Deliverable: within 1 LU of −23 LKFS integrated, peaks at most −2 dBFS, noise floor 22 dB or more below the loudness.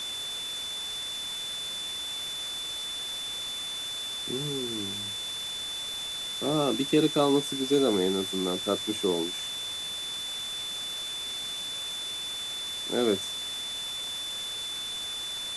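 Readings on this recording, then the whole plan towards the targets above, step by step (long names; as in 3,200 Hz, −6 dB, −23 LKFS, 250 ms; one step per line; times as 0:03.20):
interfering tone 3,500 Hz; level of the tone −33 dBFS; background noise floor −35 dBFS; target noise floor −52 dBFS; integrated loudness −29.5 LKFS; sample peak −11.0 dBFS; target loudness −23.0 LKFS
→ notch filter 3,500 Hz, Q 30
broadband denoise 17 dB, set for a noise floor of −35 dBFS
level +6.5 dB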